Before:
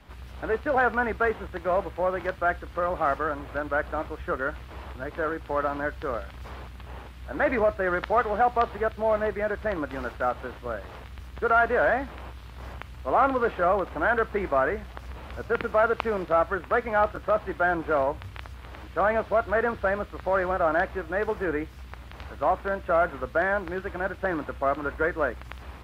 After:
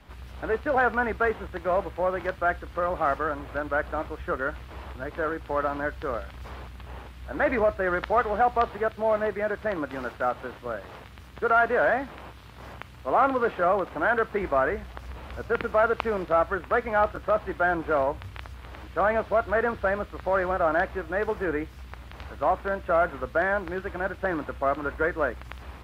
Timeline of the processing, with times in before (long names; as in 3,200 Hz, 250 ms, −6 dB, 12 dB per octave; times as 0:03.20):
0:08.70–0:14.42: high-pass filter 91 Hz